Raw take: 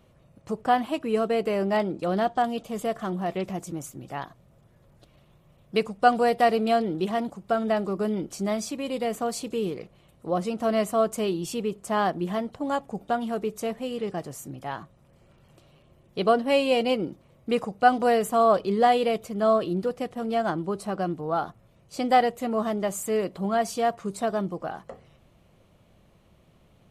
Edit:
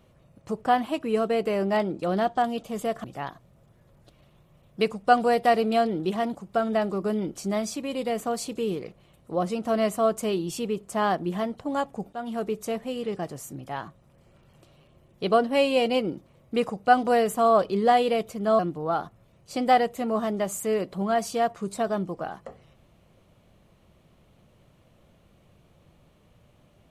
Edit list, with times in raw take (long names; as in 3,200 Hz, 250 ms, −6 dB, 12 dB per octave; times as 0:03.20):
0:03.04–0:03.99: remove
0:13.08–0:13.42: fade in equal-power, from −15.5 dB
0:19.54–0:21.02: remove